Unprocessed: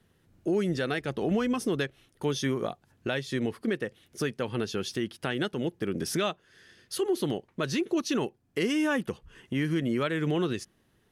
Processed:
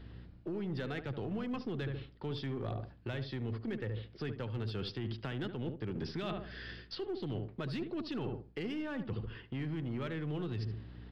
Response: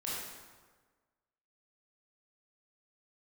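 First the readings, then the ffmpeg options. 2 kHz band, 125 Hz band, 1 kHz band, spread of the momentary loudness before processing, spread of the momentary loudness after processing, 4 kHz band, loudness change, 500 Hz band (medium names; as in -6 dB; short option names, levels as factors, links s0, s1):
-11.5 dB, -2.5 dB, -10.5 dB, 7 LU, 4 LU, -10.0 dB, -9.0 dB, -11.0 dB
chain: -filter_complex "[0:a]acrossover=split=210[s0][s1];[s1]acompressor=threshold=0.0224:ratio=6[s2];[s0][s2]amix=inputs=2:normalize=0,aeval=exprs='0.0891*(cos(1*acos(clip(val(0)/0.0891,-1,1)))-cos(1*PI/2))+0.00398*(cos(6*acos(clip(val(0)/0.0891,-1,1)))-cos(6*PI/2))':c=same,aresample=11025,aresample=44100,equalizer=f=110:t=o:w=0.26:g=12.5,asplit=2[s3][s4];[s4]adelay=73,lowpass=f=1100:p=1,volume=0.316,asplit=2[s5][s6];[s6]adelay=73,lowpass=f=1100:p=1,volume=0.37,asplit=2[s7][s8];[s8]adelay=73,lowpass=f=1100:p=1,volume=0.37,asplit=2[s9][s10];[s10]adelay=73,lowpass=f=1100:p=1,volume=0.37[s11];[s3][s5][s7][s9][s11]amix=inputs=5:normalize=0,asplit=2[s12][s13];[s13]aeval=exprs='0.0335*(abs(mod(val(0)/0.0335+3,4)-2)-1)':c=same,volume=0.266[s14];[s12][s14]amix=inputs=2:normalize=0,aeval=exprs='val(0)+0.00158*(sin(2*PI*60*n/s)+sin(2*PI*2*60*n/s)/2+sin(2*PI*3*60*n/s)/3+sin(2*PI*4*60*n/s)/4+sin(2*PI*5*60*n/s)/5)':c=same,areverse,acompressor=threshold=0.00708:ratio=8,areverse,volume=2.24"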